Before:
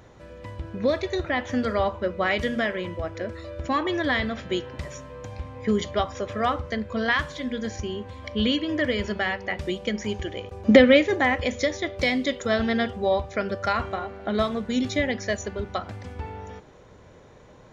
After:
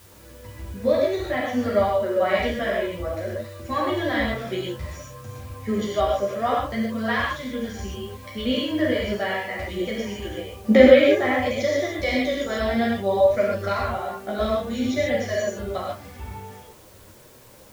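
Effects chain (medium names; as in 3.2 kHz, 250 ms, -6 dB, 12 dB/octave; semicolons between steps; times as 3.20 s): gated-style reverb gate 170 ms flat, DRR -4.5 dB; chorus voices 2, 0.56 Hz, delay 12 ms, depth 3.8 ms; in parallel at -11.5 dB: word length cut 6-bit, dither triangular; on the sum: dynamic bell 610 Hz, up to +7 dB, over -34 dBFS, Q 2.2; trim -5.5 dB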